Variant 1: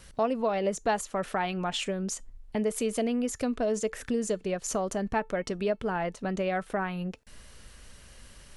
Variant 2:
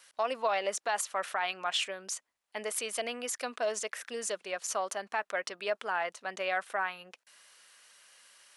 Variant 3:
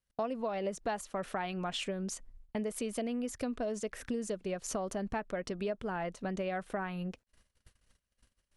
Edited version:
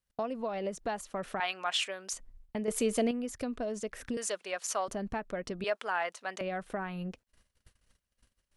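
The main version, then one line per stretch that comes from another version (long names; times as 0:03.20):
3
0:01.40–0:02.13: punch in from 2
0:02.68–0:03.11: punch in from 1
0:04.17–0:04.88: punch in from 2
0:05.64–0:06.41: punch in from 2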